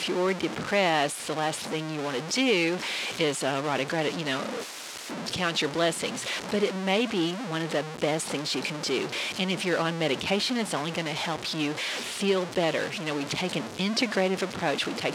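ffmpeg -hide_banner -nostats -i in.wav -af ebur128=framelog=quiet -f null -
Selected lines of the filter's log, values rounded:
Integrated loudness:
  I:         -27.7 LUFS
  Threshold: -37.7 LUFS
Loudness range:
  LRA:         1.8 LU
  Threshold: -47.8 LUFS
  LRA low:   -28.5 LUFS
  LRA high:  -26.7 LUFS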